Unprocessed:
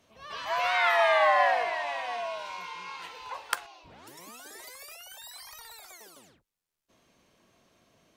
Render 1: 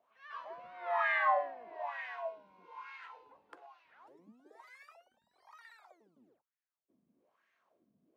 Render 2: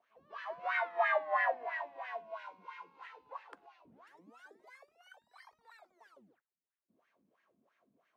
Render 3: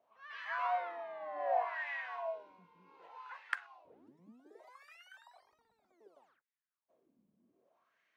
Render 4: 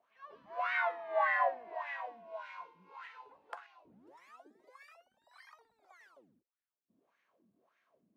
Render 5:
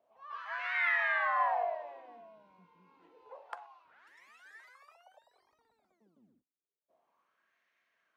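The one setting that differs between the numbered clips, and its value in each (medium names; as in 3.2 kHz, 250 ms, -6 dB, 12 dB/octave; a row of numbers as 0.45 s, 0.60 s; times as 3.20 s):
wah-wah, rate: 1.1 Hz, 3 Hz, 0.65 Hz, 1.7 Hz, 0.29 Hz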